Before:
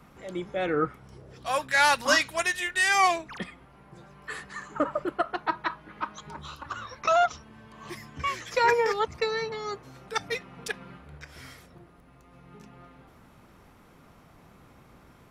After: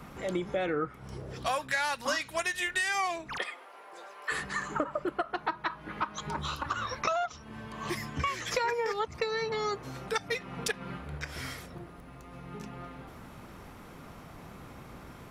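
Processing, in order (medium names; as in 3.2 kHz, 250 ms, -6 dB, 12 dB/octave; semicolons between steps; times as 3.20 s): 3.38–4.32 s: high-pass 450 Hz 24 dB/octave; compression 8:1, threshold -35 dBFS, peak gain reduction 18 dB; trim +7 dB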